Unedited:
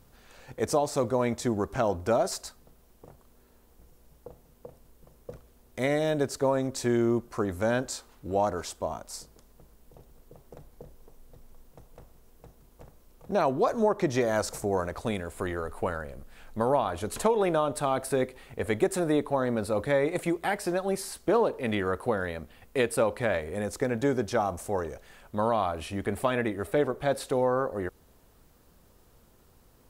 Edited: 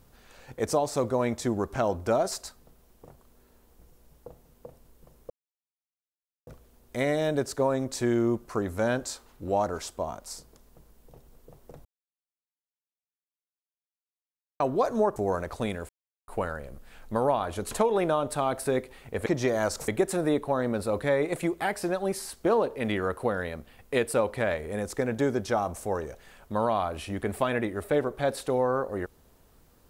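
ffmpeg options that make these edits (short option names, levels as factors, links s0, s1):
-filter_complex "[0:a]asplit=9[s0][s1][s2][s3][s4][s5][s6][s7][s8];[s0]atrim=end=5.3,asetpts=PTS-STARTPTS,afade=t=out:st=5.296:d=0.004:c=hsin,apad=pad_dur=1.17[s9];[s1]atrim=start=5.3:end=10.68,asetpts=PTS-STARTPTS,afade=t=in:d=0.004:c=hsin,afade=t=out:st=5.376:d=0.004:c=hsin[s10];[s2]atrim=start=10.68:end=13.43,asetpts=PTS-STARTPTS,volume=0[s11];[s3]atrim=start=13.43:end=13.992,asetpts=PTS-STARTPTS,afade=t=in:d=0.004:c=hsin[s12];[s4]atrim=start=14.608:end=15.34,asetpts=PTS-STARTPTS,afade=t=out:st=0.728:d=0.004:c=hsin[s13];[s5]atrim=start=15.34:end=15.73,asetpts=PTS-STARTPTS,volume=0[s14];[s6]atrim=start=15.73:end=18.712,asetpts=PTS-STARTPTS,afade=t=in:d=0.004:c=hsin[s15];[s7]atrim=start=13.988:end=14.612[s16];[s8]atrim=start=18.708[s17];[s9][s10][s11][s12]concat=n=4:v=0:a=1[s18];[s13][s14][s15]concat=n=3:v=0:a=1[s19];[s18][s19]acrossfade=d=0.004:c1=hsin:c2=hsin[s20];[s20][s16]acrossfade=d=0.004:c1=hsin:c2=hsin[s21];[s21][s17]acrossfade=d=0.004:c1=hsin:c2=hsin"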